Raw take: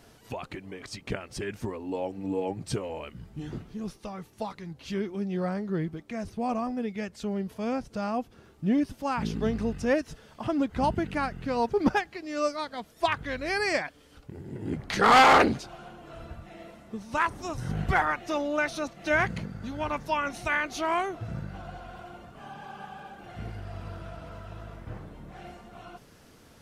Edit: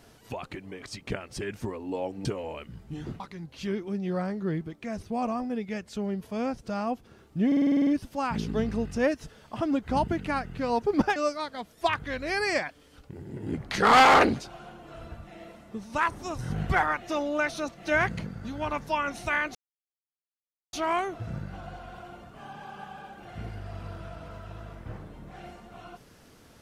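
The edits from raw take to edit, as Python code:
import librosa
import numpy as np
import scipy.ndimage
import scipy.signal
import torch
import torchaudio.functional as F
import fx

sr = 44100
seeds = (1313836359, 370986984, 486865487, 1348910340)

y = fx.edit(x, sr, fx.cut(start_s=2.25, length_s=0.46),
    fx.cut(start_s=3.66, length_s=0.81),
    fx.stutter(start_s=8.74, slice_s=0.05, count=9),
    fx.cut(start_s=12.03, length_s=0.32),
    fx.insert_silence(at_s=20.74, length_s=1.18), tone=tone)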